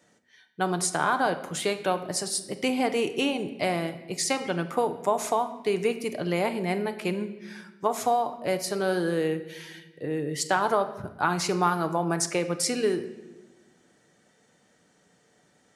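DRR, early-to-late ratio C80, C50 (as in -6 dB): 7.5 dB, 14.5 dB, 12.0 dB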